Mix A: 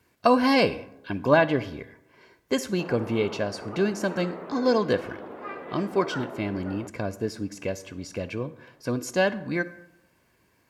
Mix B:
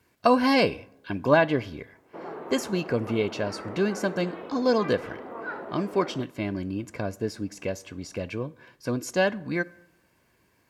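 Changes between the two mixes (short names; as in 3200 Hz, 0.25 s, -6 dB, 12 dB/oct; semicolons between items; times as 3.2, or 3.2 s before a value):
speech: send -7.0 dB; background: entry -0.65 s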